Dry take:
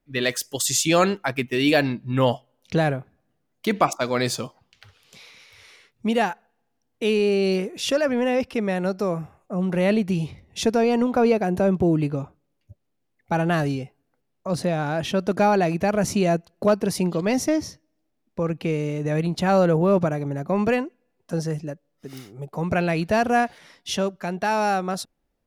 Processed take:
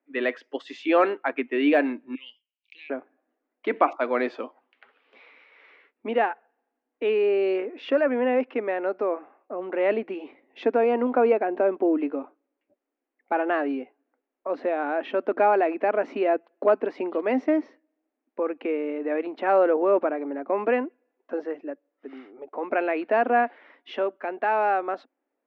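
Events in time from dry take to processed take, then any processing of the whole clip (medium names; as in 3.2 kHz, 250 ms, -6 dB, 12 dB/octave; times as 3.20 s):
2.15–2.90 s: elliptic high-pass 2.4 kHz
whole clip: low-pass 2.4 kHz 24 dB/octave; de-esser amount 80%; elliptic high-pass 260 Hz, stop band 40 dB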